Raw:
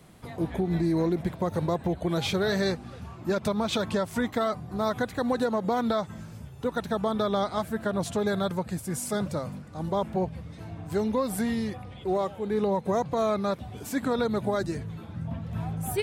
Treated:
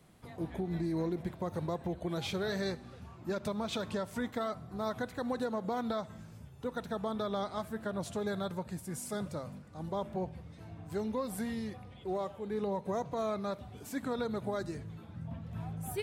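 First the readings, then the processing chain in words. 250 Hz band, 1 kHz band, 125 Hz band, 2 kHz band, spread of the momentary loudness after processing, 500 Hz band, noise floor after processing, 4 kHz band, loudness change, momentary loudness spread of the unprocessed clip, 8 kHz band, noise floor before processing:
-8.5 dB, -8.5 dB, -8.5 dB, -8.5 dB, 10 LU, -8.5 dB, -52 dBFS, -8.5 dB, -8.5 dB, 10 LU, -8.5 dB, -44 dBFS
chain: Schroeder reverb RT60 0.85 s, combs from 25 ms, DRR 18.5 dB; gain -8.5 dB

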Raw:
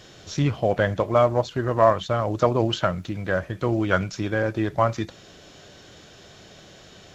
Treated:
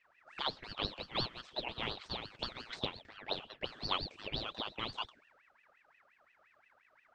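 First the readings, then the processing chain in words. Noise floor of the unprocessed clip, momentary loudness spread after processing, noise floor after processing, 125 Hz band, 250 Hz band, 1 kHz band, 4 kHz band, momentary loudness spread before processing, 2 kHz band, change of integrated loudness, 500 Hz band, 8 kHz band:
-48 dBFS, 6 LU, -71 dBFS, -24.0 dB, -22.5 dB, -17.5 dB, -1.5 dB, 7 LU, -15.0 dB, -16.5 dB, -24.0 dB, n/a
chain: spectral limiter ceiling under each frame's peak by 17 dB; auto-wah 270–2200 Hz, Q 7.9, up, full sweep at -20.5 dBFS; ring modulator with a swept carrier 1600 Hz, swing 45%, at 5.7 Hz; gain +1.5 dB

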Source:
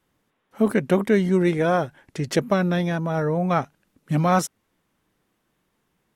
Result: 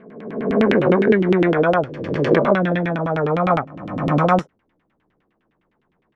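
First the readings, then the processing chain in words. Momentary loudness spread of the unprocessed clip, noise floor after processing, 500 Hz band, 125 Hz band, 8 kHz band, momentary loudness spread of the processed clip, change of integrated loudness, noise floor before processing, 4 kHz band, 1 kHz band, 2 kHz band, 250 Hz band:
7 LU, -68 dBFS, +5.5 dB, +2.0 dB, under -15 dB, 9 LU, +4.0 dB, -73 dBFS, +1.5 dB, +5.0 dB, +5.5 dB, +3.5 dB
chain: spectral swells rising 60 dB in 1.17 s; LFO low-pass saw down 9.8 Hz 260–3100 Hz

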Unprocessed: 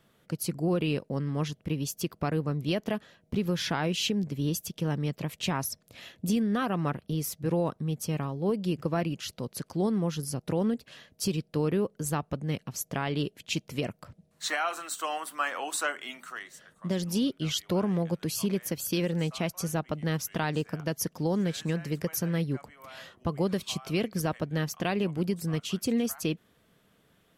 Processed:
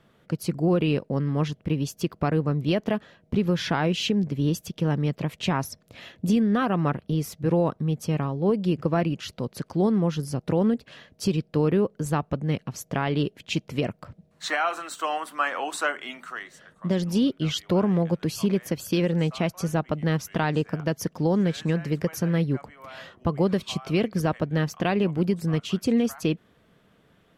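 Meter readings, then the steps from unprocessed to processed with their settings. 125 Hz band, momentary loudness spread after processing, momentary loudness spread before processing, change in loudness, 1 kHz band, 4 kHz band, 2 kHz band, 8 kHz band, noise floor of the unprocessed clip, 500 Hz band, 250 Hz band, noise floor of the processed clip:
+5.5 dB, 8 LU, 8 LU, +5.0 dB, +5.0 dB, +1.5 dB, +4.0 dB, -3.0 dB, -67 dBFS, +5.5 dB, +5.5 dB, -63 dBFS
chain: LPF 2800 Hz 6 dB/oct; gain +5.5 dB

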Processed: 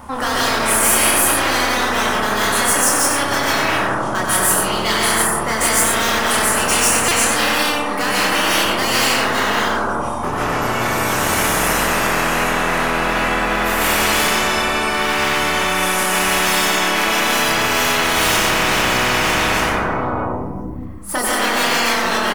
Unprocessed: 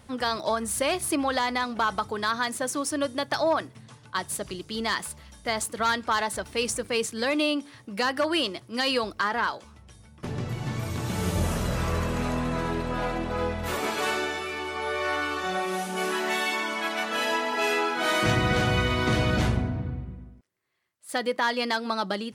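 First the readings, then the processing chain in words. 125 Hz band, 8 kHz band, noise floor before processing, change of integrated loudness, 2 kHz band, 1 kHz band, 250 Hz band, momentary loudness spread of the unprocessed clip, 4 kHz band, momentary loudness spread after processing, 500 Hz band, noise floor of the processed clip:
+2.5 dB, +18.0 dB, -52 dBFS, +11.5 dB, +12.5 dB, +11.5 dB, +7.0 dB, 8 LU, +12.5 dB, 6 LU, +7.5 dB, -23 dBFS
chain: hard clip -26 dBFS, distortion -8 dB; ten-band EQ 125 Hz -11 dB, 500 Hz -4 dB, 1000 Hz +11 dB, 2000 Hz -5 dB, 4000 Hz -10 dB, 8000 Hz -4 dB; echo 93 ms -6 dB; digital reverb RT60 1.2 s, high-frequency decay 0.25×, pre-delay 0.105 s, DRR -9 dB; chorus voices 6, 0.4 Hz, delay 28 ms, depth 4.5 ms; stuck buffer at 7.08, samples 128, times 10; spectral compressor 10:1; gain +1.5 dB

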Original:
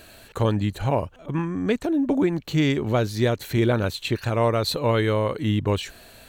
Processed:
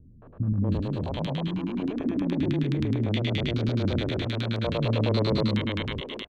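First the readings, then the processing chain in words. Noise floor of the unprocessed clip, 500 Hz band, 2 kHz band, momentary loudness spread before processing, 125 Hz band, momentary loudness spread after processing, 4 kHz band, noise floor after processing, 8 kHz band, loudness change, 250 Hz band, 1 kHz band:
-49 dBFS, -7.0 dB, -5.5 dB, 6 LU, -1.5 dB, 6 LU, -2.0 dB, -49 dBFS, under -15 dB, -3.5 dB, -3.0 dB, -9.0 dB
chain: stepped spectrum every 0.4 s; LFO low-pass square 9.5 Hz 240–3600 Hz; three bands offset in time lows, mids, highs 0.22/0.72 s, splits 250/1200 Hz

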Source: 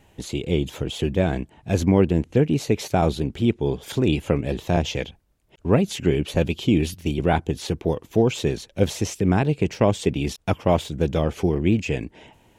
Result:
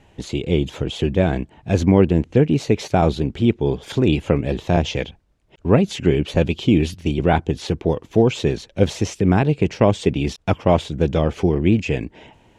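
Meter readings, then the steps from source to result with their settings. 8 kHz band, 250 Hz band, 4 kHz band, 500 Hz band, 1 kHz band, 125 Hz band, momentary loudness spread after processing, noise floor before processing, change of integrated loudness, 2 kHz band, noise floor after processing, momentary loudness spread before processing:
-1.5 dB, +3.5 dB, +2.0 dB, +3.5 dB, +3.5 dB, +3.5 dB, 7 LU, -58 dBFS, +3.5 dB, +3.0 dB, -55 dBFS, 7 LU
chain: air absorption 61 m; gain +3.5 dB

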